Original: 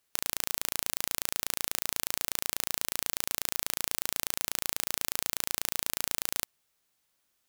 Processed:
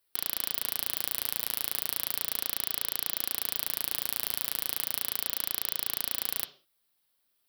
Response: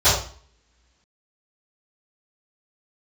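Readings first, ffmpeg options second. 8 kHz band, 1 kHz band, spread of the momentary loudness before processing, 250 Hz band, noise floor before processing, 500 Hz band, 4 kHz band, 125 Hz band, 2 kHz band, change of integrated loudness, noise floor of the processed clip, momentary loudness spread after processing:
-3.5 dB, -3.0 dB, 0 LU, -2.5 dB, -76 dBFS, -2.5 dB, -1.0 dB, -3.5 dB, -3.0 dB, +1.0 dB, -75 dBFS, 0 LU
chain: -filter_complex "[0:a]flanger=delay=1.9:depth=6.6:regen=-38:speed=0.35:shape=triangular,asplit=2[a][b];[b]highpass=f=170:w=0.5412,highpass=f=170:w=1.3066,equalizer=f=300:t=q:w=4:g=8,equalizer=f=430:t=q:w=4:g=4,equalizer=f=880:t=q:w=4:g=-9,equalizer=f=3.1k:t=q:w=4:g=10,lowpass=f=5.2k:w=0.5412,lowpass=f=5.2k:w=1.3066[c];[1:a]atrim=start_sample=2205,afade=t=out:st=0.26:d=0.01,atrim=end_sample=11907[d];[c][d]afir=irnorm=-1:irlink=0,volume=-29.5dB[e];[a][e]amix=inputs=2:normalize=0,aexciter=amount=1.3:drive=2.1:freq=3.7k"

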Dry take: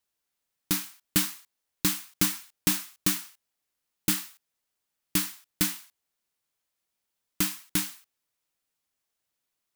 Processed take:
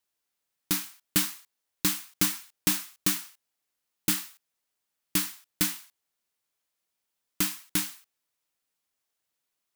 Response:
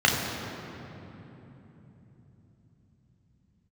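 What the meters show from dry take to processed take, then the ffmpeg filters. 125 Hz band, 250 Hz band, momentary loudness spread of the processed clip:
-2.5 dB, -1.5 dB, 8 LU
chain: -af "lowshelf=f=160:g=-5"

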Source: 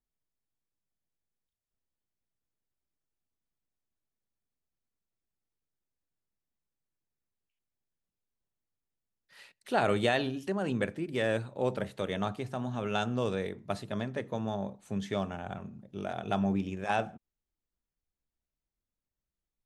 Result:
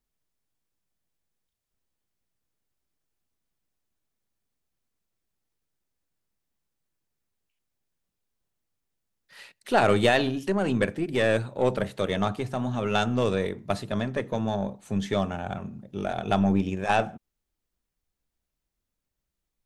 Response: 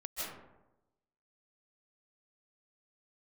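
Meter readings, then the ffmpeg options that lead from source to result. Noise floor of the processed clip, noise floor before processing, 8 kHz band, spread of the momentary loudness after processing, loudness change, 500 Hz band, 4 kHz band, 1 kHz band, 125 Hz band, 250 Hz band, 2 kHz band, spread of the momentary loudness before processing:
-84 dBFS, under -85 dBFS, +7.5 dB, 10 LU, +6.5 dB, +6.5 dB, +6.5 dB, +6.5 dB, +6.5 dB, +6.5 dB, +6.5 dB, 10 LU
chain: -af "acontrast=71,aeval=exprs='0.473*(cos(1*acos(clip(val(0)/0.473,-1,1)))-cos(1*PI/2))+0.0168*(cos(8*acos(clip(val(0)/0.473,-1,1)))-cos(8*PI/2))':c=same"

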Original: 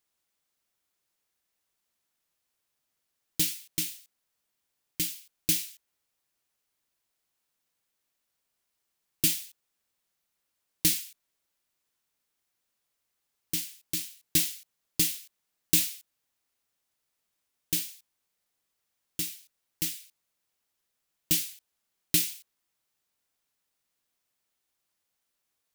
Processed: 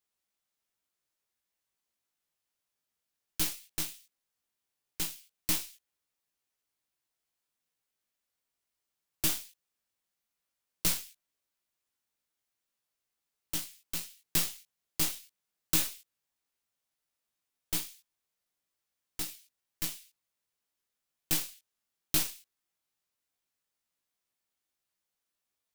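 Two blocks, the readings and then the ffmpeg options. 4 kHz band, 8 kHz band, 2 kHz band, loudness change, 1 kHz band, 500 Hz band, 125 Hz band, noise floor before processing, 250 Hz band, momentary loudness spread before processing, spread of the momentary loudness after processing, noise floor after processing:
-4.0 dB, -4.5 dB, -2.0 dB, -4.5 dB, n/a, -0.5 dB, -4.0 dB, -81 dBFS, -4.5 dB, 17 LU, 17 LU, under -85 dBFS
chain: -af "flanger=delay=16:depth=3.1:speed=0.16,aeval=exprs='0.266*(cos(1*acos(clip(val(0)/0.266,-1,1)))-cos(1*PI/2))+0.119*(cos(6*acos(clip(val(0)/0.266,-1,1)))-cos(6*PI/2))+0.133*(cos(8*acos(clip(val(0)/0.266,-1,1)))-cos(8*PI/2))':c=same,volume=-2.5dB"

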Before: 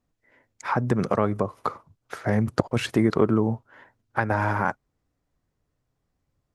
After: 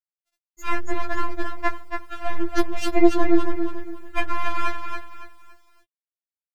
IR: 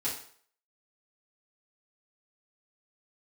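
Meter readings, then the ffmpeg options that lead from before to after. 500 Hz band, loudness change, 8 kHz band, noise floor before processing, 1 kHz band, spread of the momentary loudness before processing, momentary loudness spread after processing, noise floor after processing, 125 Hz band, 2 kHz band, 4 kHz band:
-0.5 dB, -1.0 dB, +2.5 dB, -78 dBFS, +0.5 dB, 11 LU, 16 LU, under -85 dBFS, under -10 dB, +1.0 dB, +2.0 dB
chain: -filter_complex "[0:a]afftdn=nr=26:nf=-44,adynamicequalizer=threshold=0.0126:dfrequency=840:dqfactor=3.8:tfrequency=840:tqfactor=3.8:attack=5:release=100:ratio=0.375:range=1.5:mode=boostabove:tftype=bell,asplit=2[a][b];[b]acompressor=threshold=-35dB:ratio=8,volume=2.5dB[c];[a][c]amix=inputs=2:normalize=0,aeval=exprs='0.794*(cos(1*acos(clip(val(0)/0.794,-1,1)))-cos(1*PI/2))+0.355*(cos(2*acos(clip(val(0)/0.794,-1,1)))-cos(2*PI/2))+0.2*(cos(6*acos(clip(val(0)/0.794,-1,1)))-cos(6*PI/2))+0.126*(cos(8*acos(clip(val(0)/0.794,-1,1)))-cos(8*PI/2))':c=same,asplit=2[d][e];[e]aecho=0:1:281|562|843|1124:0.501|0.155|0.0482|0.0149[f];[d][f]amix=inputs=2:normalize=0,aeval=exprs='max(val(0),0)':c=same,acrusher=bits=9:mix=0:aa=0.000001,afftfilt=real='re*4*eq(mod(b,16),0)':imag='im*4*eq(mod(b,16),0)':win_size=2048:overlap=0.75,volume=2.5dB"

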